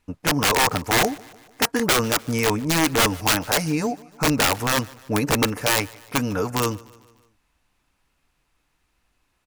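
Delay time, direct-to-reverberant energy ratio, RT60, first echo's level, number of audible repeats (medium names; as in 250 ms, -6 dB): 149 ms, no reverb, no reverb, -23.0 dB, 3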